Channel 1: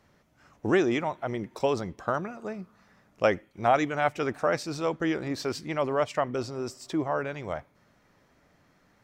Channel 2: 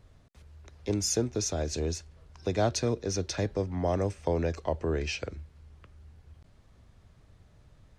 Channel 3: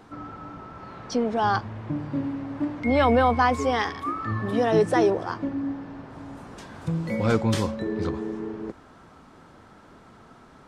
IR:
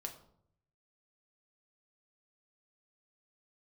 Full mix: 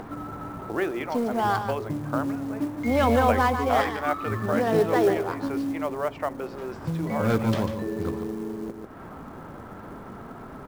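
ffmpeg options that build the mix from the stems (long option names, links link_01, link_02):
-filter_complex "[0:a]acrossover=split=280 3100:gain=0.251 1 0.0891[link_01][link_02][link_03];[link_01][link_02][link_03]amix=inputs=3:normalize=0,bandreject=frequency=60:width_type=h:width=6,bandreject=frequency=120:width_type=h:width=6,bandreject=frequency=180:width_type=h:width=6,bandreject=frequency=240:width_type=h:width=6,bandreject=frequency=300:width_type=h:width=6,bandreject=frequency=360:width_type=h:width=6,bandreject=frequency=420:width_type=h:width=6,bandreject=frequency=480:width_type=h:width=6,bandreject=frequency=540:width_type=h:width=6,adelay=50,volume=-1.5dB[link_04];[2:a]adynamicsmooth=sensitivity=3:basefreq=1900,volume=-3.5dB,asplit=3[link_05][link_06][link_07];[link_06]volume=-8.5dB[link_08];[link_07]volume=-7dB[link_09];[3:a]atrim=start_sample=2205[link_10];[link_08][link_10]afir=irnorm=-1:irlink=0[link_11];[link_09]aecho=0:1:145:1[link_12];[link_04][link_05][link_11][link_12]amix=inputs=4:normalize=0,acompressor=mode=upward:threshold=-28dB:ratio=2.5,acrusher=bits=6:mode=log:mix=0:aa=0.000001"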